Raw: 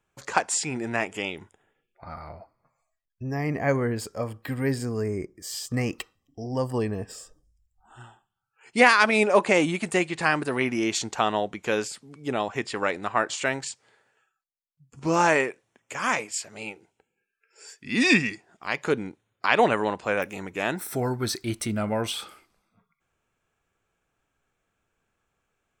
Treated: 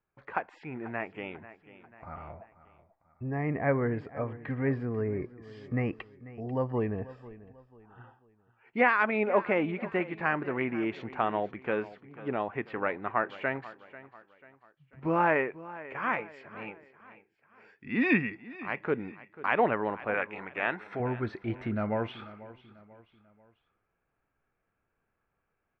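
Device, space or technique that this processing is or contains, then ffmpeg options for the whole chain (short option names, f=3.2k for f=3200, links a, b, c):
action camera in a waterproof case: -filter_complex "[0:a]asettb=1/sr,asplit=3[a][b][c];[a]atrim=end=20.144[d];[b]atrim=start=20.14:end=21,asetpts=PTS-STARTPTS,afade=t=in:d=0.004:c=qsin,afade=t=out:st=0.856:d=0.004:c=qsin,tiltshelf=f=630:g=-7.5[e];[c]atrim=start=20.996[f];[d][e]acrossfade=d=0.004:c1=hsin:c2=qsin[g];[g][f]acrossfade=d=0.004:c1=qsin:c2=hsin,lowpass=f=2.3k:w=0.5412,lowpass=f=2.3k:w=1.3066,aecho=1:1:491|982|1473:0.133|0.056|0.0235,dynaudnorm=f=180:g=13:m=5.5dB,volume=-8.5dB" -ar 44100 -c:a aac -b:a 128k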